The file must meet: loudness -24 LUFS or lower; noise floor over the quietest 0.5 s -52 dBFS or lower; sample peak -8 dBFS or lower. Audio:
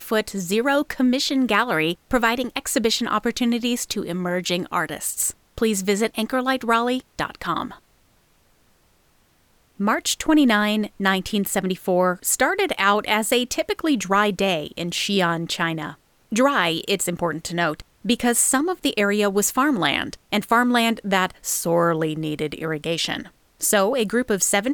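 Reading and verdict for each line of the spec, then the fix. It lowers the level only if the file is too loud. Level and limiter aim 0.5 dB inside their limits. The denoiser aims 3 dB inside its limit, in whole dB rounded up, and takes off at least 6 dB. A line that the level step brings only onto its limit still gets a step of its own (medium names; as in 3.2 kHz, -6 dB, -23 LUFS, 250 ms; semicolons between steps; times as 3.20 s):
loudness -21.5 LUFS: fail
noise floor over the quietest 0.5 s -60 dBFS: pass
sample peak -5.5 dBFS: fail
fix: trim -3 dB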